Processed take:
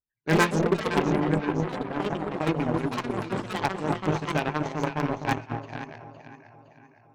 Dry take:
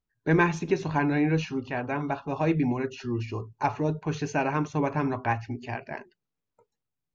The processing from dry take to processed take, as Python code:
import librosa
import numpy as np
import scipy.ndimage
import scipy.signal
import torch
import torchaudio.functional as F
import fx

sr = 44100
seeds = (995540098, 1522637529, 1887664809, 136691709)

p1 = fx.lowpass(x, sr, hz=1100.0, slope=12, at=(0.61, 2.32))
p2 = p1 + fx.echo_alternate(p1, sr, ms=256, hz=820.0, feedback_pct=72, wet_db=-2, dry=0)
p3 = 10.0 ** (-13.5 / 20.0) * (np.abs((p2 / 10.0 ** (-13.5 / 20.0) + 3.0) % 4.0 - 2.0) - 1.0)
p4 = fx.cheby_harmonics(p3, sr, harmonics=(3,), levels_db=(-11,), full_scale_db=-13.5)
p5 = fx.echo_pitch(p4, sr, ms=87, semitones=4, count=2, db_per_echo=-6.0)
p6 = np.clip(10.0 ** (22.5 / 20.0) * p5, -1.0, 1.0) / 10.0 ** (22.5 / 20.0)
y = p5 + (p6 * 10.0 ** (-6.0 / 20.0))